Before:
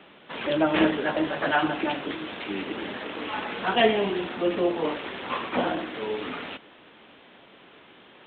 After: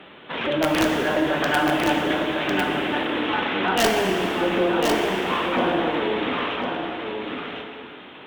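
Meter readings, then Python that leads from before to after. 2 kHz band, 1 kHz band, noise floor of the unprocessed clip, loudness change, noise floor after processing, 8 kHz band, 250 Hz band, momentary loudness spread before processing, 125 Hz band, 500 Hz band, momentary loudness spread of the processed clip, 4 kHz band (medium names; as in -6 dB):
+6.0 dB, +5.5 dB, -53 dBFS, +4.5 dB, -42 dBFS, no reading, +4.5 dB, 12 LU, +6.5 dB, +4.0 dB, 10 LU, +6.0 dB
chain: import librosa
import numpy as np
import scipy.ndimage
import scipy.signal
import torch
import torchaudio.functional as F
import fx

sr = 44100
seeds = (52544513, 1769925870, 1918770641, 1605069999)

p1 = fx.over_compress(x, sr, threshold_db=-30.0, ratio=-1.0)
p2 = x + F.gain(torch.from_numpy(p1), -2.0).numpy()
p3 = (np.mod(10.0 ** (10.5 / 20.0) * p2 + 1.0, 2.0) - 1.0) / 10.0 ** (10.5 / 20.0)
p4 = fx.cheby_harmonics(p3, sr, harmonics=(2,), levels_db=(-21,), full_scale_db=-10.5)
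p5 = np.clip(10.0 ** (13.0 / 20.0) * p4, -1.0, 1.0) / 10.0 ** (13.0 / 20.0)
p6 = p5 + fx.echo_single(p5, sr, ms=1051, db=-5.0, dry=0)
p7 = fx.rev_plate(p6, sr, seeds[0], rt60_s=2.5, hf_ratio=0.9, predelay_ms=0, drr_db=3.0)
y = F.gain(torch.from_numpy(p7), -1.0).numpy()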